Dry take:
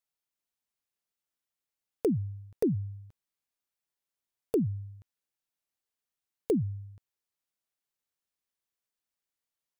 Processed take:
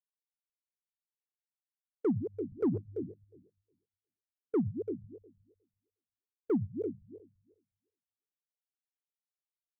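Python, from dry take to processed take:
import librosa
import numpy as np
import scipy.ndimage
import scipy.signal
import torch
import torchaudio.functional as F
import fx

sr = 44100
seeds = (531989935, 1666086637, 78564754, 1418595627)

p1 = fx.reverse_delay_fb(x, sr, ms=180, feedback_pct=48, wet_db=-10.5)
p2 = 10.0 ** (-20.5 / 20.0) * (np.abs((p1 / 10.0 ** (-20.5 / 20.0) + 3.0) % 4.0 - 2.0) - 1.0)
p3 = fx.peak_eq(p2, sr, hz=150.0, db=-10.0, octaves=0.91)
p4 = p3 + fx.echo_single(p3, sr, ms=339, db=-11.0, dry=0)
p5 = np.clip(p4, -10.0 ** (-29.0 / 20.0), 10.0 ** (-29.0 / 20.0))
p6 = fx.high_shelf(p5, sr, hz=3800.0, db=-5.0)
p7 = fx.hum_notches(p6, sr, base_hz=50, count=4)
p8 = fx.spectral_expand(p7, sr, expansion=1.5)
y = p8 * 10.0 ** (4.5 / 20.0)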